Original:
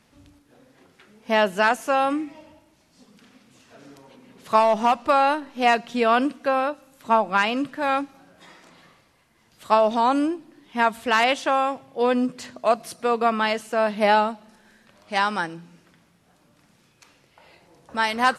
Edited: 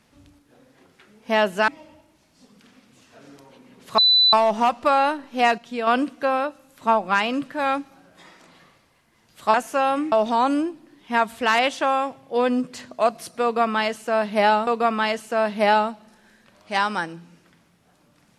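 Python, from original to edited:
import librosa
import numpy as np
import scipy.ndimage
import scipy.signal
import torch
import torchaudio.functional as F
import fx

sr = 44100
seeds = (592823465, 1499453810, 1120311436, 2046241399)

y = fx.edit(x, sr, fx.move(start_s=1.68, length_s=0.58, to_s=9.77),
    fx.insert_tone(at_s=4.56, length_s=0.35, hz=3990.0, db=-12.5),
    fx.clip_gain(start_s=5.81, length_s=0.29, db=-6.0),
    fx.repeat(start_s=13.08, length_s=1.24, count=2), tone=tone)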